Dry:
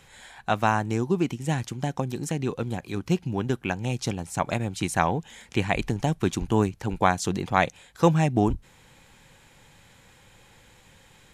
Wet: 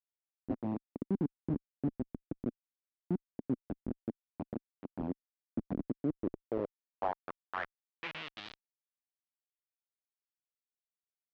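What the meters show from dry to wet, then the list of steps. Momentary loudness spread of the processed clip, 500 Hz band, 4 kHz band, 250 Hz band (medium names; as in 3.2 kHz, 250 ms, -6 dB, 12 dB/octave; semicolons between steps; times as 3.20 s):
9 LU, -14.5 dB, -15.5 dB, -10.0 dB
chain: on a send: frequency-shifting echo 106 ms, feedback 45%, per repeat +54 Hz, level -18.5 dB; on the sum: Schmitt trigger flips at -19 dBFS; band-pass sweep 260 Hz -> 6.7 kHz, 6.01–8.97 s; distance through air 230 m; trim +5.5 dB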